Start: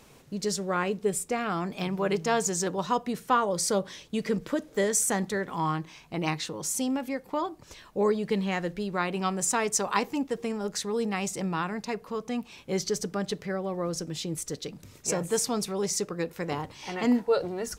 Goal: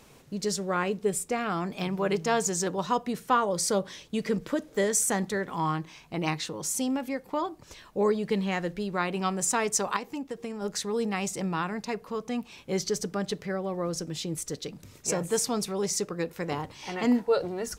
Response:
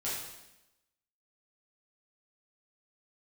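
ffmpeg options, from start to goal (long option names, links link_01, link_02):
-filter_complex "[0:a]asettb=1/sr,asplit=3[link_01][link_02][link_03];[link_01]atrim=end=9.964[link_04];[link_02]atrim=start=9.96:end=10.62,asetpts=PTS-STARTPTS,afade=type=in:duration=0.004:curve=qsin,afade=type=out:start_time=0.656:duration=0.004:curve=qsin,acompressor=threshold=-32dB:ratio=5[link_05];[link_03]atrim=start=10.616[link_06];[link_04][link_05]acrossfade=duration=0.004:curve1=hsin:curve2=qsin[link_07];[link_07][link_06]acrossfade=duration=0.004:curve1=qsin:curve2=hsin"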